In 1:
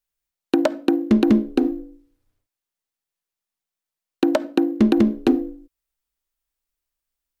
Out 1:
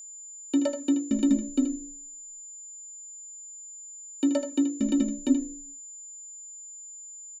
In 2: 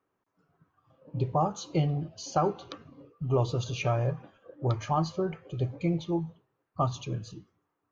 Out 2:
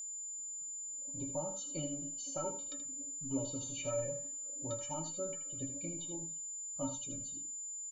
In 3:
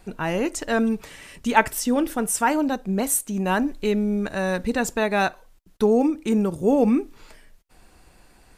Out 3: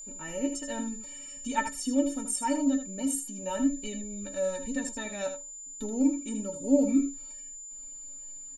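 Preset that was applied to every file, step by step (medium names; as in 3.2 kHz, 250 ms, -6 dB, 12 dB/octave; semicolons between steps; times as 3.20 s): steep low-pass 10 kHz 36 dB/octave; peaking EQ 1.2 kHz -10 dB 1.6 oct; inharmonic resonator 270 Hz, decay 0.2 s, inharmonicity 0.03; on a send: early reflections 19 ms -15 dB, 79 ms -9 dB; on the sum: whistle 7.1 kHz -46 dBFS; trim +5 dB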